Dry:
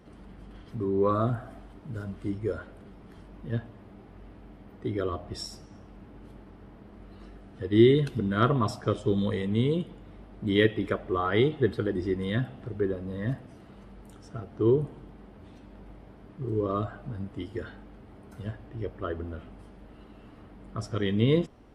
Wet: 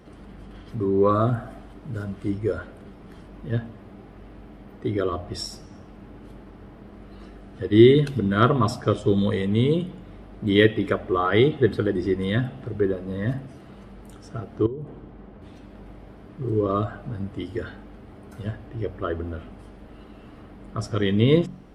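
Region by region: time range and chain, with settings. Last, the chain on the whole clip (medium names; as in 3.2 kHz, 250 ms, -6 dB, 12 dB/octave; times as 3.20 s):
14.66–15.42 s: low-pass 2 kHz 6 dB/octave + compression 20:1, threshold -34 dBFS
whole clip: band-stop 910 Hz, Q 20; de-hum 45.64 Hz, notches 6; trim +5.5 dB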